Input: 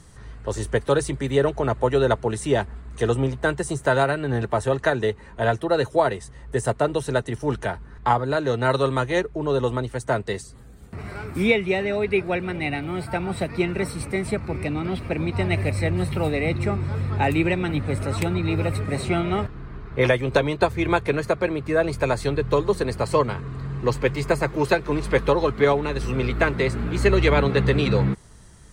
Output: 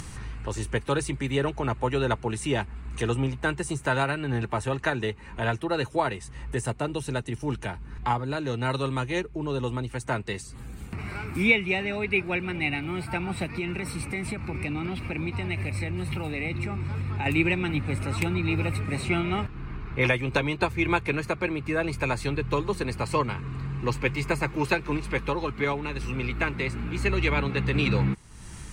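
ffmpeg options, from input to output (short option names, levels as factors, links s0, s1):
-filter_complex "[0:a]asettb=1/sr,asplit=3[s0][s1][s2];[s0]atrim=end=6.674[s3];[s1]atrim=start=6.67:end=9.9,asetpts=PTS-STARTPTS,afade=t=in:d=0.004:c=qsin,afade=t=out:st=3.226:d=0.004:c=qsin,equalizer=f=1400:t=o:w=2.2:g=-4[s4];[s2]atrim=start=9.896[s5];[s3][s4]acrossfade=d=0.004:c1=hsin:c2=qsin[s6];[s6][s5]acrossfade=d=0.004:c1=qsin:c2=hsin,asettb=1/sr,asplit=3[s7][s8][s9];[s7]atrim=end=13.474[s10];[s8]atrim=start=13.47:end=17.26,asetpts=PTS-STARTPTS,afade=t=in:d=0.004:c=qsin,afade=t=out:st=3.786:d=0.004:c=qsin,acompressor=threshold=0.0708:ratio=6:attack=3.2:release=140:knee=1:detection=peak[s11];[s9]atrim=start=17.256[s12];[s10][s11]acrossfade=d=0.004:c1=hsin:c2=qsin[s13];[s13][s12]acrossfade=d=0.004:c1=qsin:c2=hsin,asplit=3[s14][s15][s16];[s14]atrim=end=24.972[s17];[s15]atrim=start=24.968:end=27.742,asetpts=PTS-STARTPTS,volume=0.708[s18];[s16]atrim=start=27.738[s19];[s17][s18]acrossfade=d=0.004:c1=hsin:c2=hsin[s20];[s20][s19]acrossfade=d=0.004:c1=hsin:c2=hsin,superequalizer=7b=0.562:8b=0.501:12b=2,acompressor=mode=upward:threshold=0.0562:ratio=2.5,volume=0.708"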